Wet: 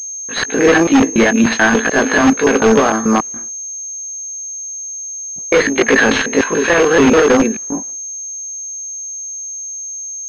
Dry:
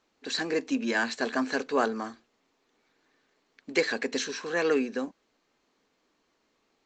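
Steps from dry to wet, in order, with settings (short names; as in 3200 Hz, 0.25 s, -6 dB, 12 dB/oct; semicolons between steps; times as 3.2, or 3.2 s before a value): slices in reverse order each 97 ms, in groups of 2; granular stretch 1.5×, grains 0.109 s; expander -57 dBFS; transient shaper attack -7 dB, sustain -2 dB; low-pass opened by the level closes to 970 Hz, open at -30 dBFS; in parallel at -4 dB: wrapped overs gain 26 dB; on the sum: maximiser +20.5 dB; pulse-width modulation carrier 6400 Hz; gain -1 dB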